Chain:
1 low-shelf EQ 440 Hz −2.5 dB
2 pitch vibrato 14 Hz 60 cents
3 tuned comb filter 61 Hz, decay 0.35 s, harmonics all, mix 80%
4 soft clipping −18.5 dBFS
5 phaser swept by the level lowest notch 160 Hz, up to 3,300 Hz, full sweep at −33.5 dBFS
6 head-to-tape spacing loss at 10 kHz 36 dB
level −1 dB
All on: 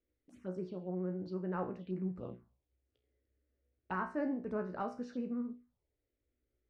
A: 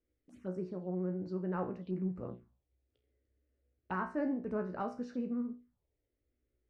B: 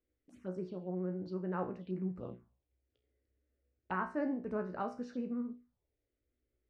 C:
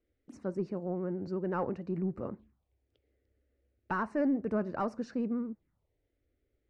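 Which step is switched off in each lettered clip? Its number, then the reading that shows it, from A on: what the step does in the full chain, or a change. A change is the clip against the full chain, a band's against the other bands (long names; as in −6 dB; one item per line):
1, change in integrated loudness +1.5 LU
4, distortion level −24 dB
3, change in crest factor −2.0 dB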